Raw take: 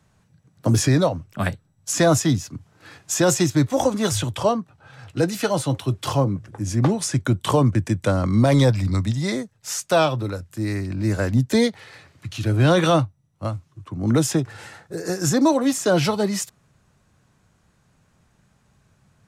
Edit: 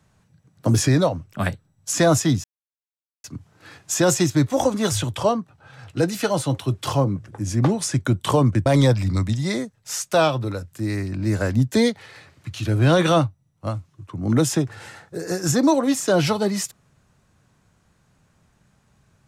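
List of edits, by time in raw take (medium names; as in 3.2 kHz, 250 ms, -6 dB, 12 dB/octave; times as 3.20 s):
2.44 s: insert silence 0.80 s
7.86–8.44 s: delete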